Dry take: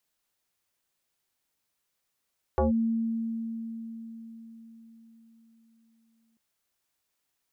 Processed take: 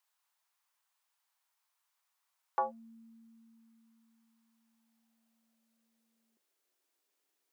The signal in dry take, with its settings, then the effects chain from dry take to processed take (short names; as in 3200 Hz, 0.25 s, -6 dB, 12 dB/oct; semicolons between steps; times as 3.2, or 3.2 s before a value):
FM tone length 3.79 s, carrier 227 Hz, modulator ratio 1.33, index 2.6, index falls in 0.14 s linear, decay 4.75 s, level -20 dB
high-pass sweep 950 Hz -> 350 Hz, 4.45–6.62; resonator 97 Hz, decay 0.23 s, mix 40%